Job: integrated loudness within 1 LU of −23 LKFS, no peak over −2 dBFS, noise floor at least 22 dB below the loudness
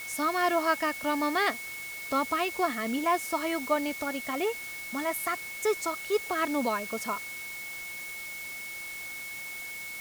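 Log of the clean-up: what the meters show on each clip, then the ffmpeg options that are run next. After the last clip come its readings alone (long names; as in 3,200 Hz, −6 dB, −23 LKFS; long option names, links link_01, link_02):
interfering tone 2,200 Hz; level of the tone −38 dBFS; background noise floor −40 dBFS; target noise floor −53 dBFS; integrated loudness −30.5 LKFS; sample peak −13.5 dBFS; target loudness −23.0 LKFS
→ -af "bandreject=frequency=2200:width=30"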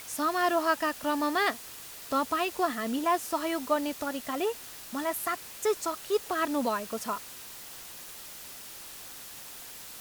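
interfering tone none found; background noise floor −45 dBFS; target noise floor −52 dBFS
→ -af "afftdn=noise_reduction=7:noise_floor=-45"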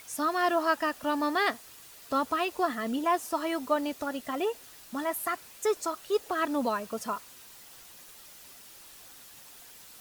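background noise floor −51 dBFS; target noise floor −52 dBFS
→ -af "afftdn=noise_reduction=6:noise_floor=-51"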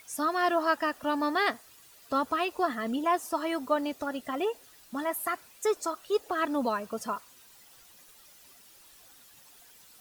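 background noise floor −56 dBFS; integrated loudness −30.0 LKFS; sample peak −14.0 dBFS; target loudness −23.0 LKFS
→ -af "volume=7dB"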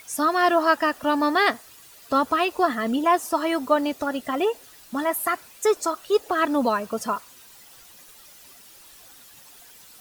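integrated loudness −23.0 LKFS; sample peak −7.0 dBFS; background noise floor −49 dBFS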